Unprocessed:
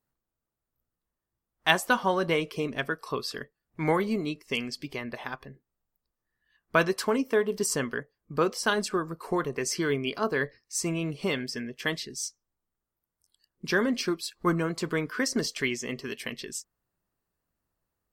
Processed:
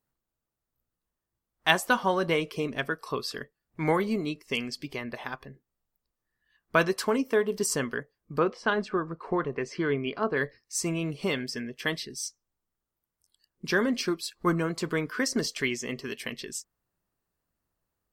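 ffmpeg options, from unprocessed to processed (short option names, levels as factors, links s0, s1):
-filter_complex "[0:a]asettb=1/sr,asplit=3[s0][s1][s2];[s0]atrim=end=8.394[s3];[s1]atrim=start=8.39:end=10.37,asetpts=PTS-STARTPTS,afade=t=in:d=0.004:c=qsin,afade=t=out:st=1.976:d=0.004:c=qsin,lowpass=2600[s4];[s2]atrim=start=10.366[s5];[s3][s4]acrossfade=d=0.004:c1=hsin:c2=qsin[s6];[s6][s5]acrossfade=d=0.004:c1=qsin:c2=hsin,asettb=1/sr,asplit=3[s7][s8][s9];[s7]atrim=end=11.804[s10];[s8]atrim=start=11.8:end=12.26,asetpts=PTS-STARTPTS,afade=t=in:d=0.004:c=qsin,afade=t=out:st=0.456:d=0.004:c=qsin,bandreject=f=6900:w=5.6[s11];[s9]atrim=start=12.256[s12];[s10][s11]acrossfade=d=0.004:c1=hsin:c2=qsin[s13];[s13][s12]acrossfade=d=0.004:c1=qsin:c2=hsin"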